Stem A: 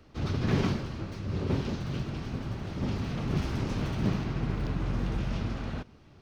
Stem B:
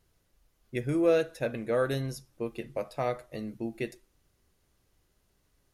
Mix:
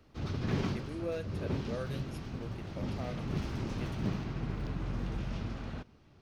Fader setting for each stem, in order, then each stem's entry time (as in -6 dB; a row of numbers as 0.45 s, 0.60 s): -5.5 dB, -13.0 dB; 0.00 s, 0.00 s